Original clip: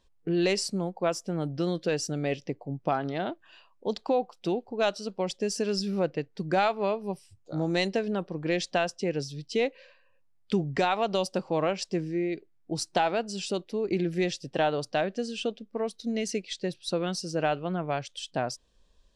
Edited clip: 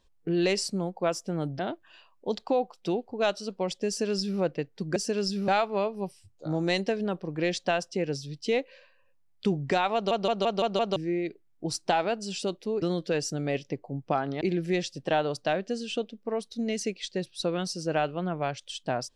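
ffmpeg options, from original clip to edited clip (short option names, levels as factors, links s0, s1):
-filter_complex "[0:a]asplit=12[s0][s1][s2][s3][s4][s5][s6][s7][s8][s9][s10][s11];[s0]atrim=end=1.592[s12];[s1]atrim=start=3.178:end=6.552[s13];[s2]atrim=start=5.468:end=5.992[s14];[s3]atrim=start=6.548:end=11.182[s15];[s4]atrim=start=11.008:end=11.182[s16];[s5]atrim=start=11.008:end=11.182[s17];[s6]atrim=start=11.008:end=11.182[s18];[s7]atrim=start=11.008:end=11.182[s19];[s8]atrim=start=11.008:end=11.182[s20];[s9]atrim=start=12.028:end=13.892[s21];[s10]atrim=start=1.588:end=3.182[s22];[s11]atrim=start=13.888[s23];[s12][s13]acrossfade=d=0.004:c1=hsin:c2=hsin[s24];[s24][s14]acrossfade=d=0.004:c1=hsin:c2=hsin[s25];[s25][s15]acrossfade=d=0.004:c1=hsin:c2=hsin[s26];[s26][s16]acrossfade=d=0.004:c1=hsin:c2=hsin[s27];[s27][s17]acrossfade=d=0.004:c1=hsin:c2=hsin[s28];[s28][s18]acrossfade=d=0.004:c1=hsin:c2=hsin[s29];[s29][s19]acrossfade=d=0.004:c1=hsin:c2=hsin[s30];[s30][s20]acrossfade=d=0.004:c1=hsin:c2=hsin[s31];[s31][s21]acrossfade=d=0.004:c1=hsin:c2=hsin[s32];[s32][s22]acrossfade=d=0.004:c1=hsin:c2=hsin[s33];[s33][s23]acrossfade=d=0.004:c1=hsin:c2=hsin"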